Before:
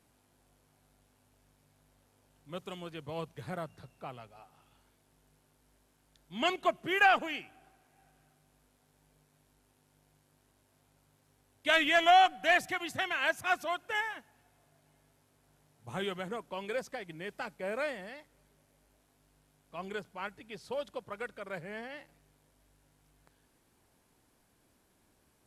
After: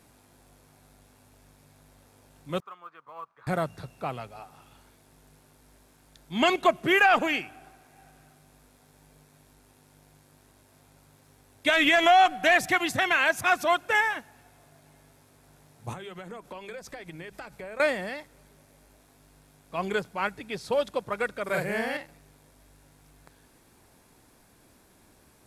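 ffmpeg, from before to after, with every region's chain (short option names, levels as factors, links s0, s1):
-filter_complex "[0:a]asettb=1/sr,asplit=3[s0][s1][s2];[s0]atrim=end=2.604[s3];[s1]atrim=start=2.6:end=3.47,asetpts=PTS-STARTPTS,afade=t=in:d=0.004:c=qsin,afade=t=out:st=0.866:d=0.004:c=qsin,bandpass=f=1200:t=q:w=6.4,acrusher=bits=9:mode=log:mix=0:aa=0.000001[s4];[s2]atrim=start=3.466[s5];[s3][s4]acrossfade=d=0.004:c1=hsin:c2=qsin[s6];[s6][s5]acrossfade=d=0.004:c1=qsin:c2=hsin,asettb=1/sr,asplit=3[s7][s8][s9];[s7]atrim=end=15.934[s10];[s8]atrim=start=15.93:end=17.8,asetpts=PTS-STARTPTS,afade=t=in:d=0.004:c=qsin,afade=t=out:st=1.866:d=0.004:c=qsin,asubboost=boost=10.5:cutoff=89,acompressor=threshold=0.00447:ratio=12:attack=3.2:release=140:knee=1:detection=peak,bandreject=f=50:t=h:w=6,bandreject=f=100:t=h:w=6,bandreject=f=150:t=h:w=6,bandreject=f=200:t=h:w=6,bandreject=f=250:t=h:w=6,bandreject=f=300:t=h:w=6[s11];[s9]atrim=start=17.796[s12];[s10][s11]acrossfade=d=0.004:c1=hsin:c2=qsin[s13];[s13][s12]acrossfade=d=0.004:c1=qsin:c2=hsin,asettb=1/sr,asplit=3[s14][s15][s16];[s14]atrim=end=21.444[s17];[s15]atrim=start=21.44:end=21.97,asetpts=PTS-STARTPTS,afade=t=in:d=0.004:c=qsin,afade=t=out:st=0.526:d=0.004:c=qsin,highshelf=f=8200:g=11,asplit=2[s18][s19];[s19]adelay=45,volume=0.794[s20];[s18][s20]amix=inputs=2:normalize=0,atrim=end_sample=23373[s21];[s16]atrim=start=21.966[s22];[s17][s21]acrossfade=d=0.004:c1=hsin:c2=qsin[s23];[s23][s22]acrossfade=d=0.004:c1=qsin:c2=hsin,bandreject=f=3000:w=15,acontrast=47,alimiter=limit=0.15:level=0:latency=1:release=72,volume=1.78"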